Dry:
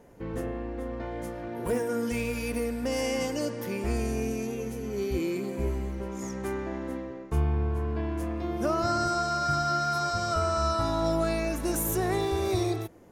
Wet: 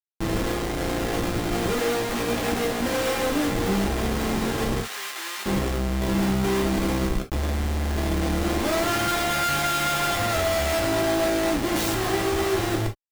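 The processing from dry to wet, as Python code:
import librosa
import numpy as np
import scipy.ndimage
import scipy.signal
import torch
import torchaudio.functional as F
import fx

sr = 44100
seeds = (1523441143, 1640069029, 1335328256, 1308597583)

y = fx.tracing_dist(x, sr, depth_ms=0.27)
y = fx.schmitt(y, sr, flips_db=-35.5)
y = fx.highpass(y, sr, hz=1400.0, slope=12, at=(4.8, 5.46))
y = fx.rev_gated(y, sr, seeds[0], gate_ms=90, shape='falling', drr_db=1.0)
y = y * 10.0 ** (3.0 / 20.0)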